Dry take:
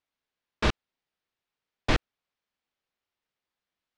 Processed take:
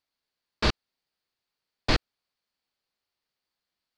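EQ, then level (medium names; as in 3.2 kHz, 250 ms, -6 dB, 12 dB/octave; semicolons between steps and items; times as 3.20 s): peaking EQ 4.5 kHz +11 dB 0.32 oct; 0.0 dB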